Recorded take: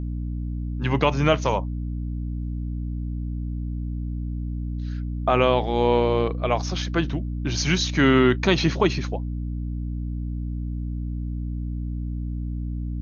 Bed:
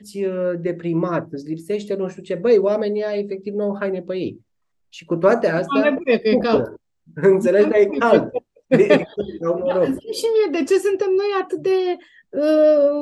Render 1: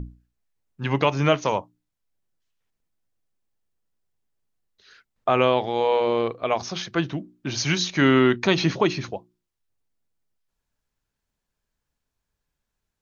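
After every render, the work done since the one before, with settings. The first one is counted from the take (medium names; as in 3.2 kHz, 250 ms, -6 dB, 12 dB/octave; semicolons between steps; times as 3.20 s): hum notches 60/120/180/240/300/360 Hz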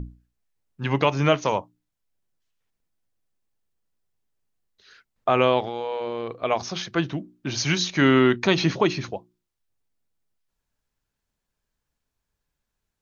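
5.60–6.41 s: compression, threshold -25 dBFS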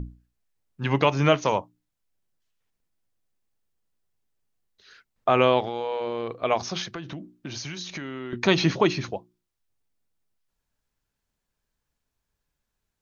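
6.91–8.33 s: compression 16:1, threshold -31 dBFS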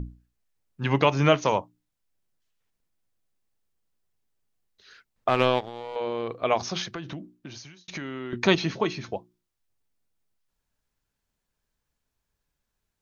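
5.28–5.96 s: power-law waveshaper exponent 1.4; 7.15–7.88 s: fade out; 8.55–9.12 s: feedback comb 220 Hz, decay 0.15 s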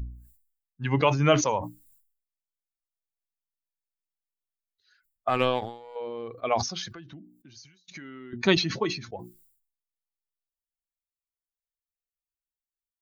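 expander on every frequency bin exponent 1.5; decay stretcher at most 91 dB/s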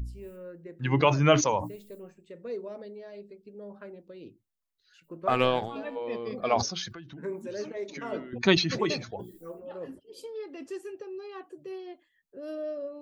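add bed -21.5 dB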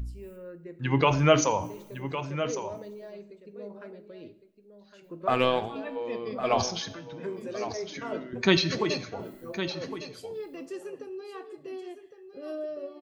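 delay 1109 ms -10.5 dB; two-slope reverb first 0.56 s, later 1.7 s, from -18 dB, DRR 11 dB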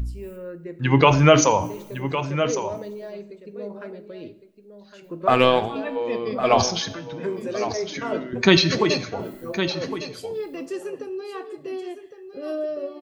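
trim +7.5 dB; peak limiter -1 dBFS, peak gain reduction 2.5 dB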